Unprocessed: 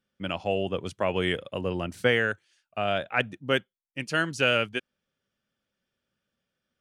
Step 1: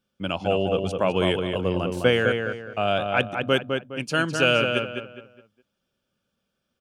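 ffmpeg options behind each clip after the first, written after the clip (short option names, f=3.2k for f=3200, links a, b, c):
-filter_complex "[0:a]equalizer=f=1.9k:w=5:g=-11.5,asplit=2[a][b];[b]adelay=207,lowpass=f=2.7k:p=1,volume=-4.5dB,asplit=2[c][d];[d]adelay=207,lowpass=f=2.7k:p=1,volume=0.34,asplit=2[e][f];[f]adelay=207,lowpass=f=2.7k:p=1,volume=0.34,asplit=2[g][h];[h]adelay=207,lowpass=f=2.7k:p=1,volume=0.34[i];[c][e][g][i]amix=inputs=4:normalize=0[j];[a][j]amix=inputs=2:normalize=0,volume=4dB"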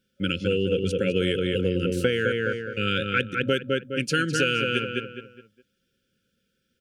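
-af "afftfilt=real='re*(1-between(b*sr/4096,550,1300))':imag='im*(1-between(b*sr/4096,550,1300))':win_size=4096:overlap=0.75,acompressor=threshold=-24dB:ratio=6,volume=4.5dB"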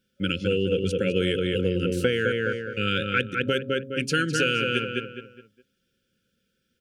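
-af "bandreject=f=134.6:t=h:w=4,bandreject=f=269.2:t=h:w=4,bandreject=f=403.8:t=h:w=4,bandreject=f=538.4:t=h:w=4,bandreject=f=673:t=h:w=4"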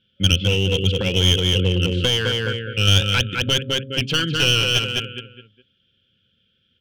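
-af "lowpass=f=3.2k:t=q:w=8.6,aeval=exprs='clip(val(0),-1,0.106)':c=same,equalizer=f=99:t=o:w=1.2:g=12"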